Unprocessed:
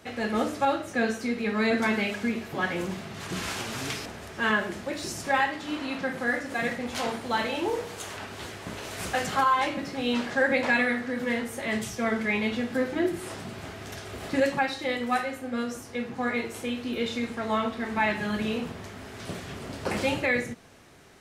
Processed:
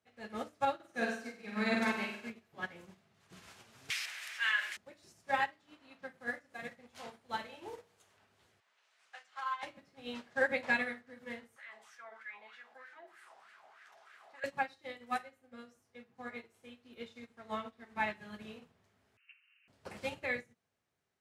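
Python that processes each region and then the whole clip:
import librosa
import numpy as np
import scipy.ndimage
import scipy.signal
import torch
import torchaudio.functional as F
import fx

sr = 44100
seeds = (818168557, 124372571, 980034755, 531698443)

y = fx.chain(x, sr, fx.highpass(hz=150.0, slope=12),
    fx.room_flutter(wall_m=8.2, rt60_s=0.97), at=(0.75, 2.3))
y = fx.chain(y, sr, fx.highpass_res(hz=2100.0, q=1.9),
    fx.env_flatten(amount_pct=70), at=(3.9, 4.77))
y = fx.chain(y, sr, fx.highpass(hz=1100.0, slope=12),
    fx.air_absorb(metres=75.0), at=(8.6, 9.63))
y = fx.chain(y, sr, fx.filter_lfo_bandpass(shape='sine', hz=3.2, low_hz=730.0, high_hz=1700.0, q=4.0),
    fx.tilt_eq(slope=4.0),
    fx.env_flatten(amount_pct=70), at=(11.56, 14.44))
y = fx.chain(y, sr, fx.freq_invert(carrier_hz=2900),
    fx.cheby2_highpass(hz=740.0, order=4, stop_db=40), at=(19.17, 19.68))
y = scipy.signal.sosfilt(scipy.signal.butter(2, 63.0, 'highpass', fs=sr, output='sos'), y)
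y = fx.peak_eq(y, sr, hz=300.0, db=-5.0, octaves=0.73)
y = fx.upward_expand(y, sr, threshold_db=-38.0, expansion=2.5)
y = y * librosa.db_to_amplitude(-4.5)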